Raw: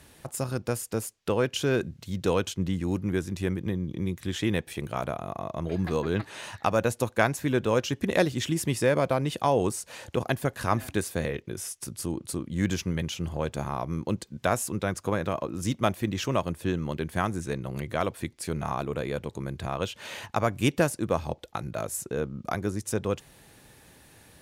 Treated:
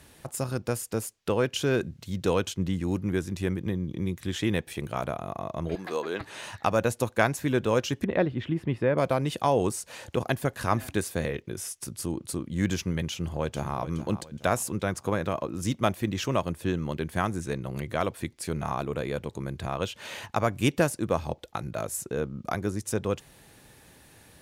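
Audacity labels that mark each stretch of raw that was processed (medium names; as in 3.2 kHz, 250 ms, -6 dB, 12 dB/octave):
5.750000	6.210000	high-pass 400 Hz
8.040000	8.980000	distance through air 480 m
13.110000	13.780000	echo throw 420 ms, feedback 40%, level -12.5 dB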